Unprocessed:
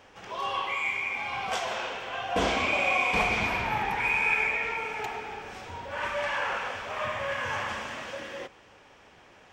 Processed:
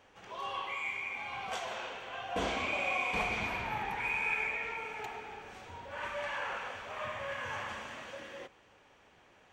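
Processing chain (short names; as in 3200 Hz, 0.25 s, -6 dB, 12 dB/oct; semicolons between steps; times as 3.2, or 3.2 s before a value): notch 5200 Hz, Q 11; gain -7.5 dB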